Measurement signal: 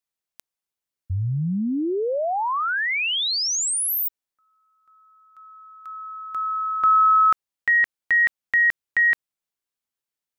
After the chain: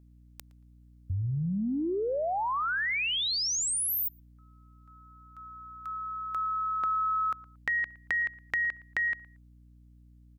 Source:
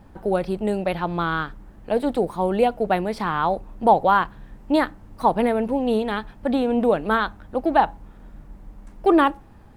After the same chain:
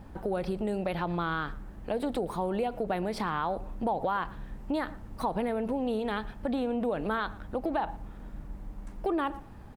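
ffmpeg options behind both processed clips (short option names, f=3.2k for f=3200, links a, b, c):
-filter_complex "[0:a]acompressor=threshold=-30dB:ratio=4:attack=13:release=57:knee=6:detection=rms,aeval=exprs='val(0)+0.00178*(sin(2*PI*60*n/s)+sin(2*PI*2*60*n/s)/2+sin(2*PI*3*60*n/s)/3+sin(2*PI*4*60*n/s)/4+sin(2*PI*5*60*n/s)/5)':c=same,asplit=2[a][b];[b]adelay=115,lowpass=f=2.3k:p=1,volume=-19dB,asplit=2[c][d];[d]adelay=115,lowpass=f=2.3k:p=1,volume=0.23[e];[a][c][e]amix=inputs=3:normalize=0"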